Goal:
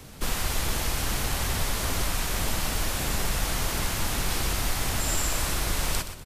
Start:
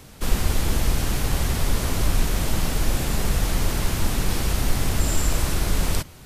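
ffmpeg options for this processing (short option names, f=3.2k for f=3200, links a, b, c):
-filter_complex "[0:a]acrossover=split=610|940[a][b][c];[a]acompressor=threshold=-25dB:ratio=6[d];[d][b][c]amix=inputs=3:normalize=0,aecho=1:1:123|246|369:0.282|0.0817|0.0237"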